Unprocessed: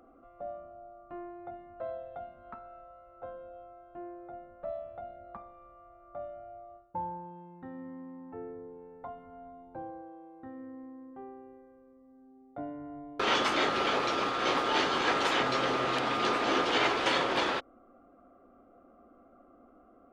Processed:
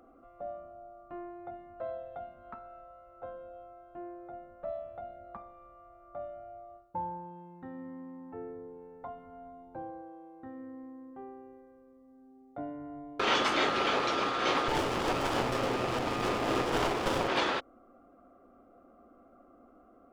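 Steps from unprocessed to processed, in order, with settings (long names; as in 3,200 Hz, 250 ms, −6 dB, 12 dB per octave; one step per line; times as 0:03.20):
loose part that buzzes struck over −38 dBFS, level −28 dBFS
0:14.68–0:17.28: windowed peak hold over 17 samples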